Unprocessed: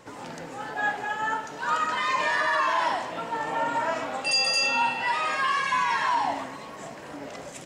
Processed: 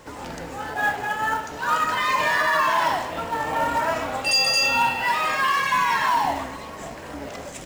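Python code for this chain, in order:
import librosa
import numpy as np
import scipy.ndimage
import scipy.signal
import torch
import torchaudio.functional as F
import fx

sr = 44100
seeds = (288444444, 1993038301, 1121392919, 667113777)

p1 = fx.octave_divider(x, sr, octaves=2, level_db=-5.0)
p2 = fx.quant_companded(p1, sr, bits=4)
y = p1 + (p2 * 10.0 ** (-5.5 / 20.0))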